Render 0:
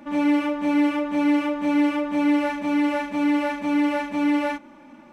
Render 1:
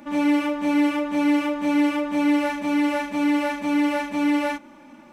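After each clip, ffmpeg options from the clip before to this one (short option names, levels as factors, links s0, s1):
-af "highshelf=f=4700:g=7.5"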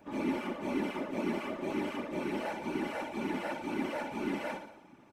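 -af "aecho=1:1:60|120|180|240|300|360|420:0.335|0.198|0.117|0.0688|0.0406|0.0239|0.0141,afftfilt=real='hypot(re,im)*cos(2*PI*random(0))':imag='hypot(re,im)*sin(2*PI*random(1))':win_size=512:overlap=0.75,volume=0.473"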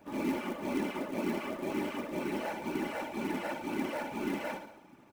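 -af "acrusher=bits=5:mode=log:mix=0:aa=0.000001"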